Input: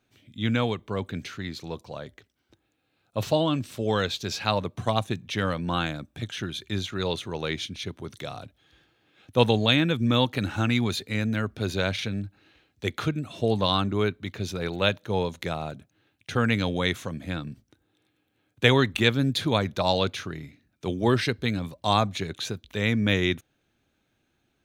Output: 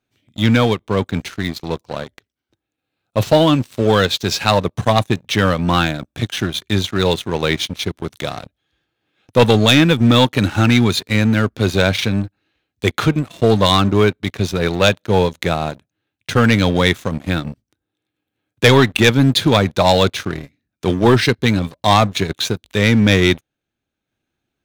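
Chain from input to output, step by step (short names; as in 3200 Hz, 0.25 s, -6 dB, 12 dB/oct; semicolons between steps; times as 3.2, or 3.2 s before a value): sample leveller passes 3; transient shaper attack 0 dB, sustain -4 dB; gain +1 dB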